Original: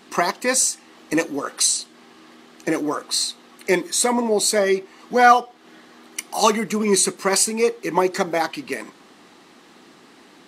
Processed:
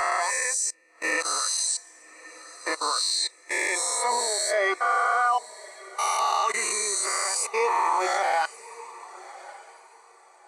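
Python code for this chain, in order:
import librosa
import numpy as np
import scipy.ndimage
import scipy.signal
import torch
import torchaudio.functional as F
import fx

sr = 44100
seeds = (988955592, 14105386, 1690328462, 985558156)

y = fx.spec_swells(x, sr, rise_s=1.9)
y = scipy.signal.sosfilt(scipy.signal.butter(2, 800.0, 'highpass', fs=sr, output='sos'), y)
y = fx.level_steps(y, sr, step_db=24)
y = fx.echo_diffused(y, sr, ms=1202, feedback_pct=42, wet_db=-12)
y = fx.sample_gate(y, sr, floor_db=-40.5, at=(7.9, 8.31))
y = fx.spectral_expand(y, sr, expansion=1.5)
y = y * 10.0 ** (-3.0 / 20.0)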